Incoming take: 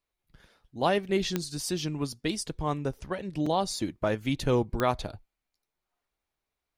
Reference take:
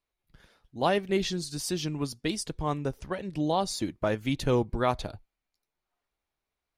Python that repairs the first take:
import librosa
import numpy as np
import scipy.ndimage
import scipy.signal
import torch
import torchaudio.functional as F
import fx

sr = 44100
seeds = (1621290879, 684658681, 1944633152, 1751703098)

y = fx.fix_declick_ar(x, sr, threshold=10.0)
y = fx.fix_interpolate(y, sr, at_s=(3.46,), length_ms=4.1)